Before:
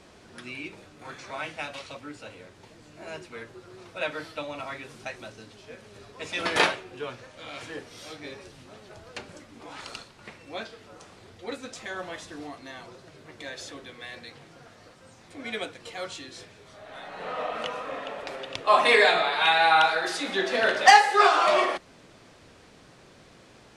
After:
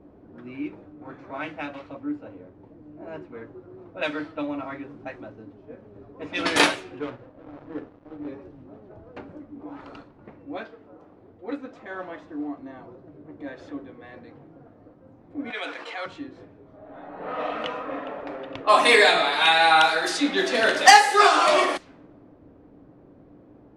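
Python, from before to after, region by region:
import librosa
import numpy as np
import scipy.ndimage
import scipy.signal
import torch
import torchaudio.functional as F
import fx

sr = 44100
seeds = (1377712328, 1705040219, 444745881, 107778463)

y = fx.chain(x, sr, fx.dead_time(dead_ms=0.26),
    fx.lowpass(hz=5700.0, slope=12),
    fx.room_flutter(wall_m=10.5, rt60_s=0.24), at=(6.99, 8.28))
y = fx.chain(y, sr, fx.median_filter(points=3),
    fx.low_shelf(hz=210.0, db=-7.5), at=(10.57, 12.57))
y = fx.chain(y, sr, fx.highpass(hz=730.0, slope=12),
    fx.env_flatten(amount_pct=70), at=(15.5, 16.06))
y = fx.high_shelf(y, sr, hz=6800.0, db=11.0)
y = fx.env_lowpass(y, sr, base_hz=570.0, full_db=-21.5)
y = fx.peak_eq(y, sr, hz=290.0, db=12.0, octaves=0.22)
y = y * 10.0 ** (2.0 / 20.0)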